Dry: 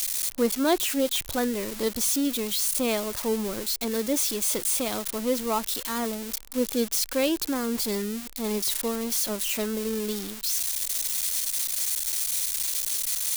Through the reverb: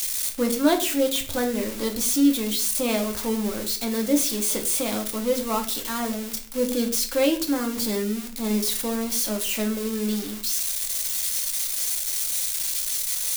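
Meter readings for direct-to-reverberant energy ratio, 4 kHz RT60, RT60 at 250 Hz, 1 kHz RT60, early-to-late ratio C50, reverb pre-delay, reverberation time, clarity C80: 2.5 dB, 0.35 s, 0.70 s, 0.40 s, 11.5 dB, 3 ms, 0.45 s, 15.5 dB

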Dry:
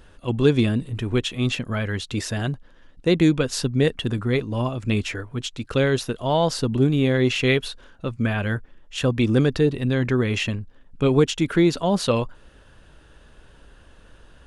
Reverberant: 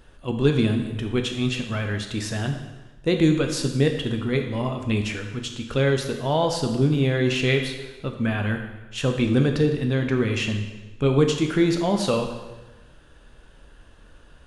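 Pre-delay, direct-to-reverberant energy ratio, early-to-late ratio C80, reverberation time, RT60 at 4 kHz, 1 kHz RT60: 6 ms, 4.0 dB, 8.5 dB, 1.2 s, 1.1 s, 1.1 s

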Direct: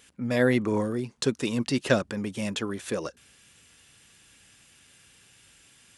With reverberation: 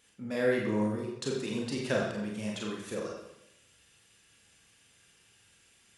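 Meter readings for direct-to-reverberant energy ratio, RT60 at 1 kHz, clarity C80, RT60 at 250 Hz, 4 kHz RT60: -2.5 dB, 0.85 s, 4.5 dB, 0.90 s, 0.75 s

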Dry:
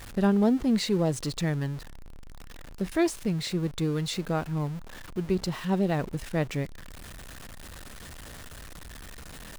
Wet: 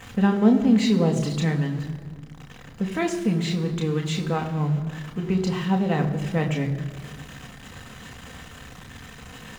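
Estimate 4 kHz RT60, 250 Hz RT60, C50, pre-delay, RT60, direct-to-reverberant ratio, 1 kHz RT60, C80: 1.2 s, 2.1 s, 11.0 dB, 3 ms, 1.7 s, 2.5 dB, 1.6 s, 11.5 dB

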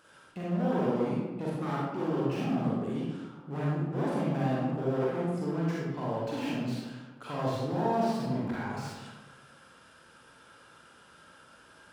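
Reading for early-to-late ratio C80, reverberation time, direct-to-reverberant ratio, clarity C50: 1.0 dB, 1.2 s, -6.5 dB, -2.5 dB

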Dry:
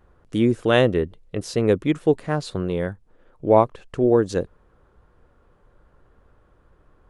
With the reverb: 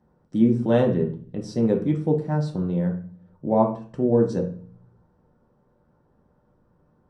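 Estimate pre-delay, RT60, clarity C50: 3 ms, 0.45 s, 9.0 dB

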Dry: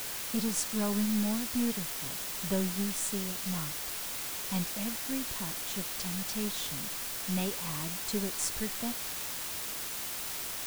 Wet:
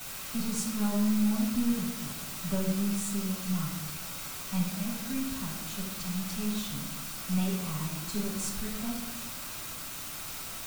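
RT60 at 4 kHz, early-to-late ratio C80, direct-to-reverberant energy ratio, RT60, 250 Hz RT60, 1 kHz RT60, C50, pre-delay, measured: 0.60 s, 7.0 dB, -7.0 dB, 1.0 s, 1.4 s, 0.90 s, 4.0 dB, 7 ms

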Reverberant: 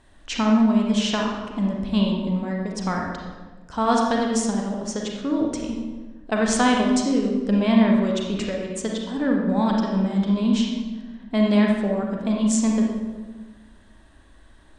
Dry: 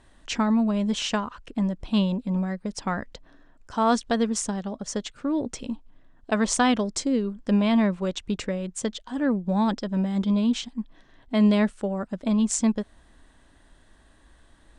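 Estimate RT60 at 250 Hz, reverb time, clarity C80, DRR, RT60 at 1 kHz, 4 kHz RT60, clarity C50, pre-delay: 1.7 s, 1.3 s, 4.0 dB, -0.5 dB, 1.2 s, 0.90 s, 1.0 dB, 34 ms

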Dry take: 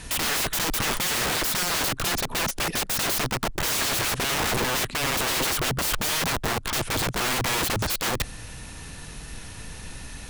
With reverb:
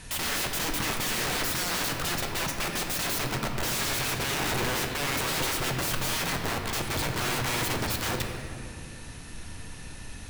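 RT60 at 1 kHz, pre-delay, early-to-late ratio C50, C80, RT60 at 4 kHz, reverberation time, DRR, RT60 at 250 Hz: 1.9 s, 5 ms, 4.0 dB, 5.5 dB, 1.4 s, 2.2 s, 2.0 dB, 3.5 s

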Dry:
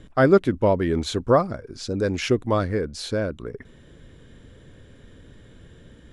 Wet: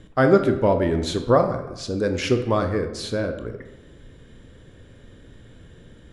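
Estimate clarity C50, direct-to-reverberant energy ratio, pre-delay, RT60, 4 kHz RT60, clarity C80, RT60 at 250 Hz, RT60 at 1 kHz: 9.0 dB, 6.5 dB, 19 ms, 1.0 s, 0.60 s, 11.5 dB, 1.1 s, 1.0 s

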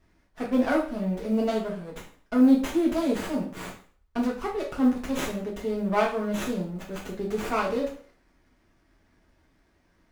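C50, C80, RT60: 7.5 dB, 12.5 dB, 0.45 s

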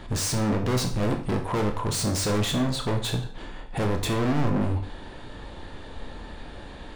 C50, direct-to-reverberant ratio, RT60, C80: 9.0 dB, 3.5 dB, 0.50 s, 13.5 dB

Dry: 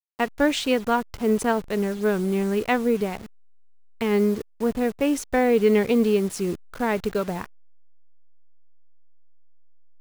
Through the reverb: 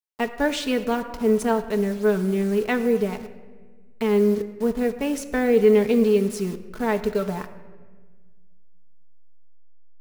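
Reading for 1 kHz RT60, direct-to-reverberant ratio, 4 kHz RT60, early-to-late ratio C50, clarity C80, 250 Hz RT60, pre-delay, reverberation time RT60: 1.3 s, 4.5 dB, 0.90 s, 12.5 dB, 13.5 dB, 2.0 s, 4 ms, 1.5 s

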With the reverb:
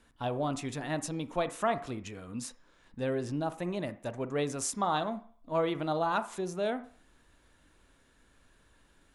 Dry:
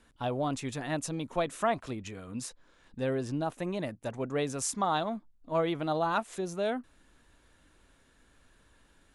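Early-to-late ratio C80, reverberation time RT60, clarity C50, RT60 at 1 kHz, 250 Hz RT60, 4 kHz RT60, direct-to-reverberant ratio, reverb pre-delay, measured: 19.5 dB, 0.50 s, 15.0 dB, 0.55 s, 0.30 s, 0.60 s, 12.0 dB, 31 ms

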